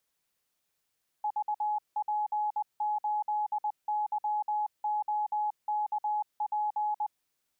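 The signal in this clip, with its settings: Morse "VP8YOKP" 20 wpm 843 Hz -27 dBFS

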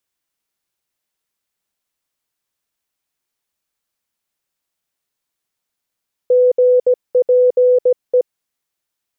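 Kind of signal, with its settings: Morse "GPE" 17 wpm 499 Hz -8 dBFS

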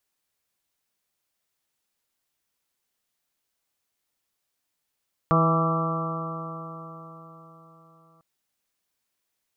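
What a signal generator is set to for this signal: stretched partials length 2.90 s, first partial 162 Hz, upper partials -7.5/-7/-6/-10.5/-11/0/-10 dB, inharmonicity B 0.0011, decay 4.27 s, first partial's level -20 dB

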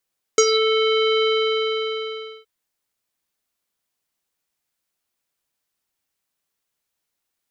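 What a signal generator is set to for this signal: synth note square A4 24 dB/octave, low-pass 3.5 kHz, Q 9.2, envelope 1 oct, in 0.21 s, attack 2.3 ms, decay 0.06 s, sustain -7.5 dB, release 1.22 s, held 0.85 s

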